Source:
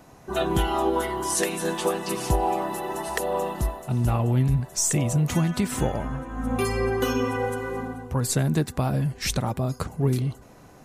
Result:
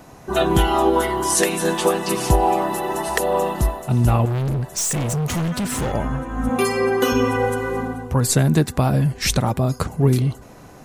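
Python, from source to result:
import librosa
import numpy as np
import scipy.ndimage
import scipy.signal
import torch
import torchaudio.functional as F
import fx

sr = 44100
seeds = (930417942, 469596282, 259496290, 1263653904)

y = fx.clip_hard(x, sr, threshold_db=-26.5, at=(4.25, 5.93))
y = fx.highpass(y, sr, hz=190.0, slope=12, at=(6.49, 7.12))
y = F.gain(torch.from_numpy(y), 6.5).numpy()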